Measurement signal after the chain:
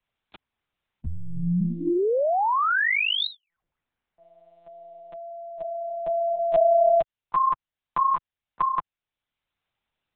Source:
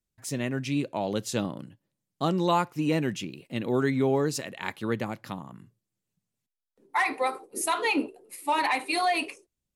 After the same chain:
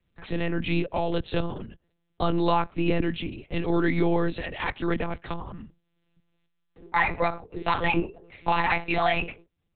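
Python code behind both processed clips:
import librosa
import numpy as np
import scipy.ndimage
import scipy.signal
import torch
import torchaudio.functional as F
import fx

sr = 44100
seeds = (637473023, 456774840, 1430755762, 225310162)

y = fx.lpc_monotone(x, sr, seeds[0], pitch_hz=170.0, order=10)
y = fx.band_squash(y, sr, depth_pct=40)
y = F.gain(torch.from_numpy(y), 2.5).numpy()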